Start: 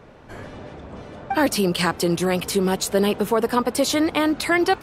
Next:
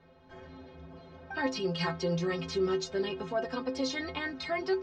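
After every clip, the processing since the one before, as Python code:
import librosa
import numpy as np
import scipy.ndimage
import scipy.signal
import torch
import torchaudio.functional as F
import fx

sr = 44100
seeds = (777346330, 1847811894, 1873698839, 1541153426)

y = scipy.signal.sosfilt(scipy.signal.butter(6, 5800.0, 'lowpass', fs=sr, output='sos'), x)
y = fx.rider(y, sr, range_db=10, speed_s=0.5)
y = fx.stiff_resonator(y, sr, f0_hz=78.0, decay_s=0.49, stiffness=0.03)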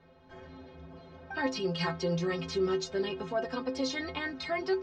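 y = x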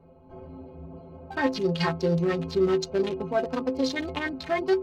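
y = fx.wiener(x, sr, points=25)
y = y * librosa.db_to_amplitude(7.0)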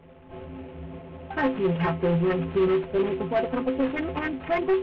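y = fx.cvsd(x, sr, bps=16000)
y = 10.0 ** (-20.0 / 20.0) * np.tanh(y / 10.0 ** (-20.0 / 20.0))
y = y * librosa.db_to_amplitude(4.0)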